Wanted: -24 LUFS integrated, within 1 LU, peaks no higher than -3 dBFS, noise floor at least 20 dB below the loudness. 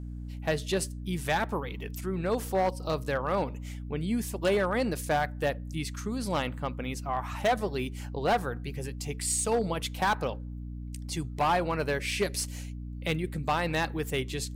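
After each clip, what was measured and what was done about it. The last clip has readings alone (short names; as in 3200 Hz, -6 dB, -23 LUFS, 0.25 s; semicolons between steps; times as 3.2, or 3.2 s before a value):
clipped 1.0%; flat tops at -20.5 dBFS; hum 60 Hz; harmonics up to 300 Hz; hum level -36 dBFS; loudness -30.5 LUFS; peak -20.5 dBFS; loudness target -24.0 LUFS
-> clip repair -20.5 dBFS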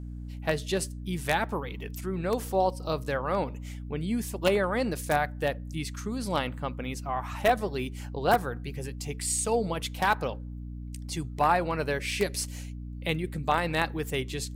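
clipped 0.0%; hum 60 Hz; harmonics up to 300 Hz; hum level -36 dBFS
-> notches 60/120/180/240/300 Hz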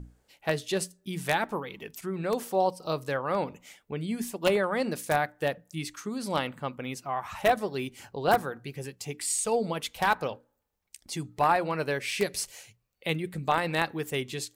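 hum none; loudness -30.0 LUFS; peak -10.5 dBFS; loudness target -24.0 LUFS
-> gain +6 dB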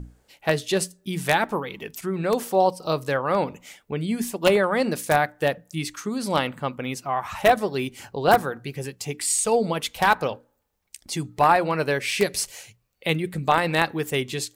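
loudness -24.0 LUFS; peak -4.5 dBFS; noise floor -69 dBFS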